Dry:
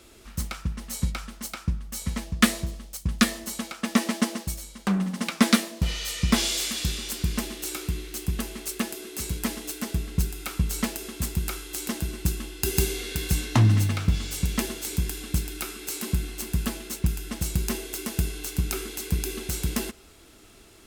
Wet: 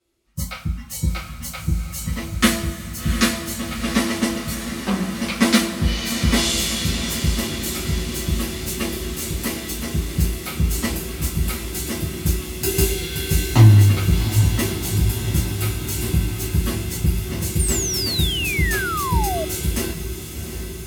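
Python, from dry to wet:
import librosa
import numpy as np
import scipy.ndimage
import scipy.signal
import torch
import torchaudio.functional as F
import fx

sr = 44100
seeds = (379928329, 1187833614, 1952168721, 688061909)

p1 = fx.noise_reduce_blind(x, sr, reduce_db=25)
p2 = p1 + fx.echo_diffused(p1, sr, ms=741, feedback_pct=72, wet_db=-9, dry=0)
p3 = fx.rev_double_slope(p2, sr, seeds[0], early_s=0.25, late_s=1.7, knee_db=-19, drr_db=-8.0)
p4 = fx.spec_paint(p3, sr, seeds[1], shape='fall', start_s=17.59, length_s=1.86, low_hz=610.0, high_hz=9300.0, level_db=-21.0)
y = p4 * 10.0 ** (-4.0 / 20.0)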